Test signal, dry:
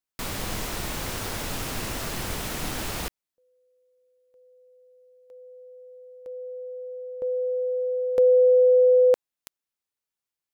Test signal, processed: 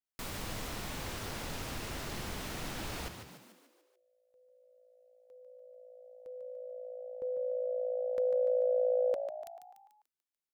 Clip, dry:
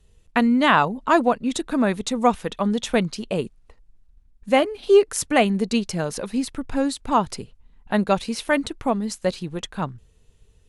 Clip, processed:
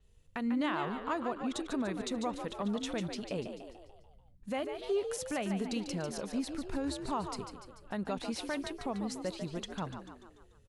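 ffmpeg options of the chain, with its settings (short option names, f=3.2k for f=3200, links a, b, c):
-filter_complex "[0:a]acompressor=threshold=-19dB:ratio=6:attack=0.22:release=142:knee=6:detection=rms,asplit=2[a][b];[b]asplit=6[c][d][e][f][g][h];[c]adelay=146,afreqshift=57,volume=-8dB[i];[d]adelay=292,afreqshift=114,volume=-13.8dB[j];[e]adelay=438,afreqshift=171,volume=-19.7dB[k];[f]adelay=584,afreqshift=228,volume=-25.5dB[l];[g]adelay=730,afreqshift=285,volume=-31.4dB[m];[h]adelay=876,afreqshift=342,volume=-37.2dB[n];[i][j][k][l][m][n]amix=inputs=6:normalize=0[o];[a][o]amix=inputs=2:normalize=0,adynamicequalizer=threshold=0.00355:dfrequency=6900:dqfactor=0.7:tfrequency=6900:tqfactor=0.7:attack=5:release=100:ratio=0.375:range=2.5:mode=cutabove:tftype=highshelf,volume=-8.5dB"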